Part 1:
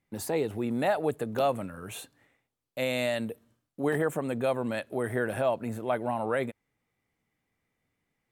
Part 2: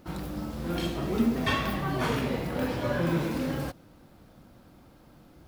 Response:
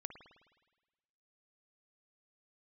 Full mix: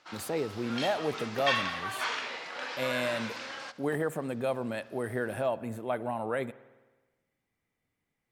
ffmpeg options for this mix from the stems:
-filter_complex "[0:a]volume=0.501,asplit=2[s0][s1];[s1]volume=0.631[s2];[1:a]highpass=1200,lowpass=f=6700:w=0.5412,lowpass=f=6700:w=1.3066,volume=1.33,asplit=2[s3][s4];[s4]volume=0.126[s5];[2:a]atrim=start_sample=2205[s6];[s2][s6]afir=irnorm=-1:irlink=0[s7];[s5]aecho=0:1:73|146|219|292|365|438|511|584|657:1|0.57|0.325|0.185|0.106|0.0602|0.0343|0.0195|0.0111[s8];[s0][s3][s7][s8]amix=inputs=4:normalize=0"

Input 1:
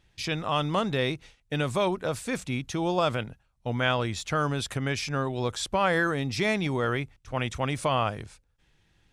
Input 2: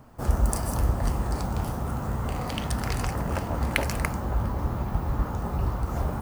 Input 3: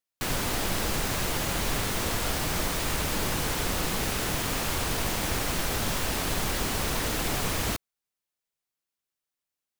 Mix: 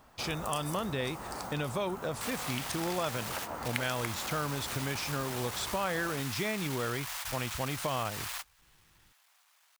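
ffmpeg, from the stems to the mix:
-filter_complex "[0:a]volume=0.841,asplit=2[s0][s1];[1:a]highpass=f=880:p=1,volume=0.891[s2];[2:a]volume=31.6,asoftclip=hard,volume=0.0316,highpass=f=860:w=0.5412,highpass=f=860:w=1.3066,adelay=2000,volume=0.841[s3];[s1]apad=whole_len=520265[s4];[s3][s4]sidechaingate=range=0.0316:threshold=0.00178:ratio=16:detection=peak[s5];[s0][s2][s5]amix=inputs=3:normalize=0,acompressor=threshold=0.02:ratio=2"

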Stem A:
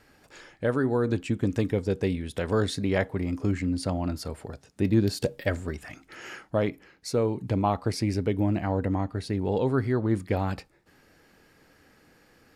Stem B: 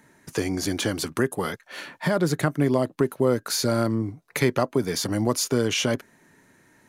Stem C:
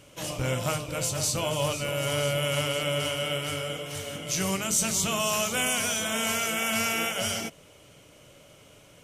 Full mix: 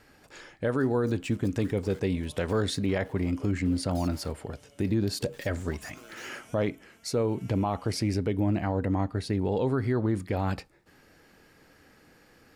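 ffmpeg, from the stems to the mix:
-filter_complex "[0:a]volume=1.12,asplit=2[s0][s1];[1:a]highpass=f=370:w=0.5412,highpass=f=370:w=1.3066,aphaser=in_gain=1:out_gain=1:delay=1.2:decay=0.66:speed=0.66:type=triangular,aeval=exprs='val(0)*gte(abs(val(0)),0.0562)':c=same,adelay=450,volume=0.2[s2];[2:a]tiltshelf=f=970:g=3,adelay=650,volume=0.299[s3];[s1]apad=whole_len=427297[s4];[s3][s4]sidechaincompress=threshold=0.0224:ratio=8:attack=7.7:release=1040[s5];[s2][s5]amix=inputs=2:normalize=0,tremolo=f=0.5:d=0.79,acompressor=threshold=0.00282:ratio=2.5,volume=1[s6];[s0][s6]amix=inputs=2:normalize=0,alimiter=limit=0.133:level=0:latency=1:release=59"

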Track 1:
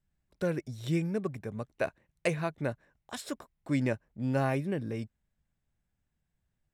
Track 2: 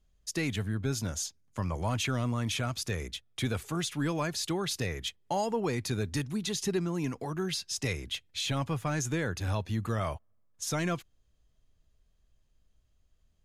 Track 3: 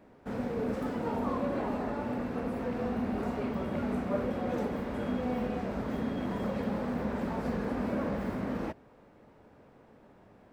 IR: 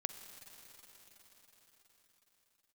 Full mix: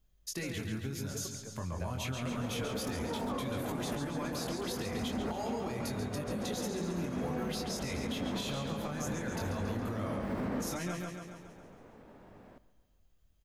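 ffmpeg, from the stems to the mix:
-filter_complex "[0:a]volume=0.299[s0];[1:a]flanger=delay=19.5:depth=4.7:speed=0.8,volume=1.26,asplit=3[s1][s2][s3];[s2]volume=0.282[s4];[2:a]adelay=2050,volume=1.33,asplit=2[s5][s6];[s6]volume=0.126[s7];[s3]apad=whole_len=554736[s8];[s5][s8]sidechaincompress=threshold=0.0158:ratio=8:attack=16:release=457[s9];[s0][s1]amix=inputs=2:normalize=0,aexciter=amount=2.8:drive=5.5:freq=11000,acompressor=threshold=0.0178:ratio=5,volume=1[s10];[s4][s7]amix=inputs=2:normalize=0,aecho=0:1:138|276|414|552|690|828|966|1104|1242:1|0.59|0.348|0.205|0.121|0.0715|0.0422|0.0249|0.0147[s11];[s9][s10][s11]amix=inputs=3:normalize=0,alimiter=level_in=1.33:limit=0.0631:level=0:latency=1:release=92,volume=0.75"

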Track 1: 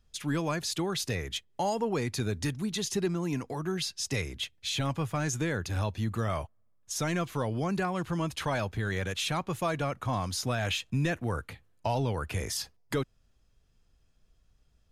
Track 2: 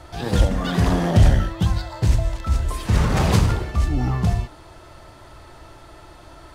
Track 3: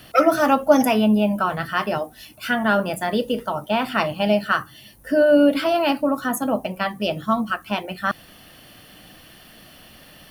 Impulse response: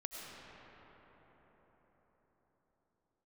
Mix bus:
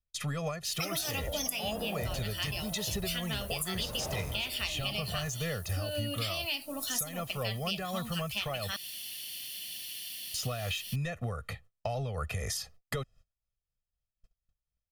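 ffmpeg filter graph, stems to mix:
-filter_complex "[0:a]tremolo=f=4:d=0.48,aecho=1:1:1.6:0.96,alimiter=limit=0.0891:level=0:latency=1:release=306,volume=1.33,asplit=3[s0][s1][s2];[s0]atrim=end=8.74,asetpts=PTS-STARTPTS,afade=t=out:st=8.736:d=0.004:c=hsin[s3];[s1]atrim=start=8.74:end=10.34,asetpts=PTS-STARTPTS,volume=0[s4];[s2]atrim=start=10.34,asetpts=PTS-STARTPTS,afade=t=in:d=0.004:c=hsin[s5];[s3][s4][s5]concat=n=3:v=0:a=1[s6];[1:a]equalizer=f=600:t=o:w=0.77:g=14,adelay=850,volume=0.133[s7];[2:a]aexciter=amount=11.2:drive=7.4:freq=2200,adelay=650,volume=0.15[s8];[s6][s7][s8]amix=inputs=3:normalize=0,agate=range=0.0398:threshold=0.00282:ratio=16:detection=peak,acompressor=threshold=0.0282:ratio=6"

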